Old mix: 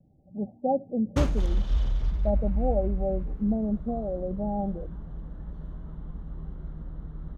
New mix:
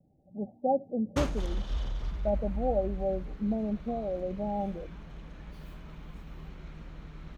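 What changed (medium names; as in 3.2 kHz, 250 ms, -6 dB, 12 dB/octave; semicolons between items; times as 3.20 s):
second sound: remove boxcar filter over 18 samples; master: add bass shelf 230 Hz -8 dB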